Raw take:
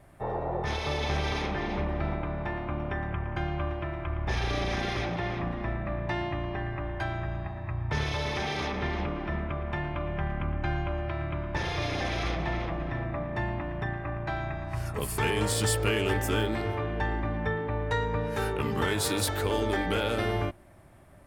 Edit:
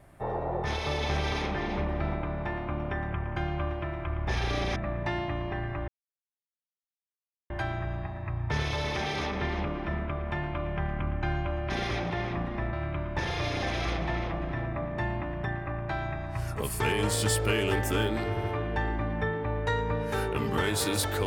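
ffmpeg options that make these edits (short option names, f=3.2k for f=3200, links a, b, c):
-filter_complex "[0:a]asplit=7[a][b][c][d][e][f][g];[a]atrim=end=4.762[h];[b]atrim=start=5.788:end=6.91,asetpts=PTS-STARTPTS,afade=t=out:st=1.118:d=0.004:c=hsin,apad=pad_dur=1.62[i];[c]atrim=start=6.91:end=11.112,asetpts=PTS-STARTPTS,afade=t=in:d=0.004:c=hsin[j];[d]atrim=start=4.758:end=5.792[k];[e]atrim=start=11.108:end=16.752[l];[f]atrim=start=16.678:end=16.752[m];[g]atrim=start=16.678[n];[i][j]concat=n=2:v=0:a=1[o];[h][o]acrossfade=d=0.004:c1=hsin:c2=hsin[p];[p][k]acrossfade=d=0.004:c1=hsin:c2=hsin[q];[q][l]acrossfade=d=0.004:c1=hsin:c2=hsin[r];[r][m]acrossfade=d=0.004:c1=hsin:c2=hsin[s];[s][n]acrossfade=d=0.004:c1=hsin:c2=hsin"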